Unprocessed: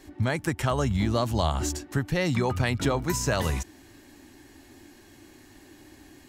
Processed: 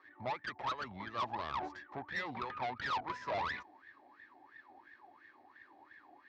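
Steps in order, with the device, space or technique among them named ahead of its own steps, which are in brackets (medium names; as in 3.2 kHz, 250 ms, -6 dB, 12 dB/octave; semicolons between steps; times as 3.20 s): wah-wah guitar rig (wah-wah 2.9 Hz 720–1800 Hz, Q 15; valve stage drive 48 dB, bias 0.6; cabinet simulation 87–4500 Hz, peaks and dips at 150 Hz -4 dB, 750 Hz -5 dB, 1.5 kHz -8 dB, 2.9 kHz -6 dB); trim +18 dB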